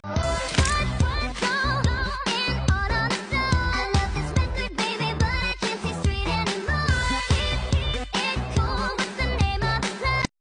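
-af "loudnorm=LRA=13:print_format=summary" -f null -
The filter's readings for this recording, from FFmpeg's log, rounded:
Input Integrated:    -24.6 LUFS
Input True Peak:      -8.0 dBTP
Input LRA:             1.3 LU
Input Threshold:     -34.6 LUFS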